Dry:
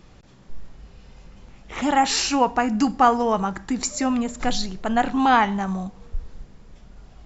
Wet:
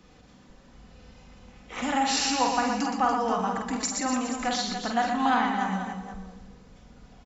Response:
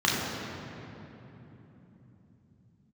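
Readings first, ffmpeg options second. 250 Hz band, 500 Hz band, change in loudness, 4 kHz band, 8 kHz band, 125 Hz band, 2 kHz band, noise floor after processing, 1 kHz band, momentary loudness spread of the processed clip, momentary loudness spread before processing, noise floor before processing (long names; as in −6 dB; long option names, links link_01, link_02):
−6.0 dB, −6.0 dB, −5.0 dB, −2.5 dB, can't be measured, −6.5 dB, −3.5 dB, −54 dBFS, −5.0 dB, 13 LU, 14 LU, −50 dBFS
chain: -filter_complex "[0:a]acrossover=split=280|610[link_01][link_02][link_03];[link_01]acompressor=threshold=-33dB:ratio=4[link_04];[link_02]acompressor=threshold=-39dB:ratio=4[link_05];[link_03]acompressor=threshold=-21dB:ratio=4[link_06];[link_04][link_05][link_06]amix=inputs=3:normalize=0,highpass=frequency=70:poles=1,aecho=1:1:4:0.43,aecho=1:1:48|120|236|287|479:0.562|0.501|0.15|0.376|0.211,asplit=2[link_07][link_08];[1:a]atrim=start_sample=2205,afade=type=out:start_time=0.44:duration=0.01,atrim=end_sample=19845,adelay=96[link_09];[link_08][link_09]afir=irnorm=-1:irlink=0,volume=-28dB[link_10];[link_07][link_10]amix=inputs=2:normalize=0,volume=-4dB"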